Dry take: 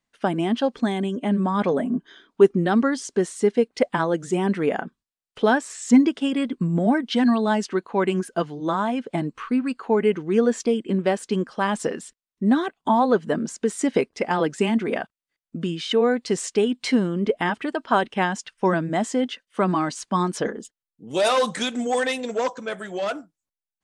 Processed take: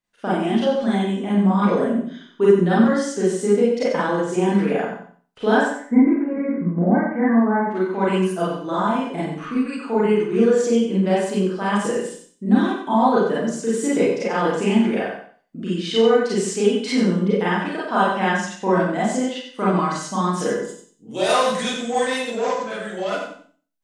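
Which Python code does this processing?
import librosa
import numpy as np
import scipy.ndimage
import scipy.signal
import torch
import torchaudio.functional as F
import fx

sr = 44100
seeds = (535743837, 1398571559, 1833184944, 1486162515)

y = fx.steep_lowpass(x, sr, hz=2200.0, slope=96, at=(5.63, 7.7), fade=0.02)
y = fx.echo_feedback(y, sr, ms=91, feedback_pct=25, wet_db=-7.5)
y = fx.rev_schroeder(y, sr, rt60_s=0.41, comb_ms=31, drr_db=-7.5)
y = y * librosa.db_to_amplitude(-6.5)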